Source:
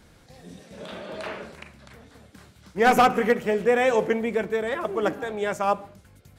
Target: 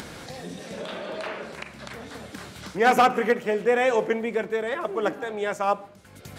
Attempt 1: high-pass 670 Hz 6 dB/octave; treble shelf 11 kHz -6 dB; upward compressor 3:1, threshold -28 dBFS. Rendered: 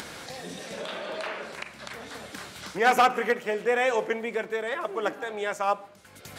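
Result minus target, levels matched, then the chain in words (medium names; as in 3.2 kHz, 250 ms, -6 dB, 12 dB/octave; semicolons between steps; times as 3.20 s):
250 Hz band -3.5 dB
high-pass 220 Hz 6 dB/octave; treble shelf 11 kHz -6 dB; upward compressor 3:1, threshold -28 dBFS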